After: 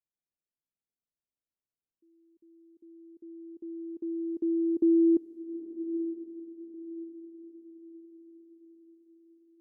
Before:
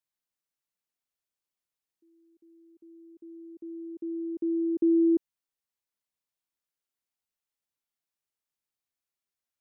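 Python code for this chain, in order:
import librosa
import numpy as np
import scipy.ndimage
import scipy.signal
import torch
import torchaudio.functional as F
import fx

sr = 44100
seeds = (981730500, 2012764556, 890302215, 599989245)

y = fx.env_lowpass(x, sr, base_hz=450.0, full_db=-31.0)
y = fx.echo_diffused(y, sr, ms=905, feedback_pct=42, wet_db=-11.0)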